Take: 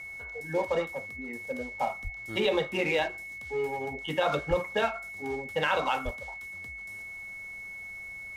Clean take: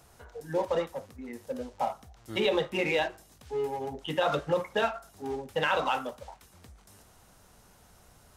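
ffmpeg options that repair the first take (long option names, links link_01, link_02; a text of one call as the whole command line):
ffmpeg -i in.wav -filter_complex "[0:a]bandreject=frequency=2200:width=30,asplit=3[link_01][link_02][link_03];[link_01]afade=type=out:start_time=2.03:duration=0.02[link_04];[link_02]highpass=frequency=140:width=0.5412,highpass=frequency=140:width=1.3066,afade=type=in:start_time=2.03:duration=0.02,afade=type=out:start_time=2.15:duration=0.02[link_05];[link_03]afade=type=in:start_time=2.15:duration=0.02[link_06];[link_04][link_05][link_06]amix=inputs=3:normalize=0,asplit=3[link_07][link_08][link_09];[link_07]afade=type=out:start_time=4.49:duration=0.02[link_10];[link_08]highpass=frequency=140:width=0.5412,highpass=frequency=140:width=1.3066,afade=type=in:start_time=4.49:duration=0.02,afade=type=out:start_time=4.61:duration=0.02[link_11];[link_09]afade=type=in:start_time=4.61:duration=0.02[link_12];[link_10][link_11][link_12]amix=inputs=3:normalize=0,asplit=3[link_13][link_14][link_15];[link_13]afade=type=out:start_time=6.04:duration=0.02[link_16];[link_14]highpass=frequency=140:width=0.5412,highpass=frequency=140:width=1.3066,afade=type=in:start_time=6.04:duration=0.02,afade=type=out:start_time=6.16:duration=0.02[link_17];[link_15]afade=type=in:start_time=6.16:duration=0.02[link_18];[link_16][link_17][link_18]amix=inputs=3:normalize=0" out.wav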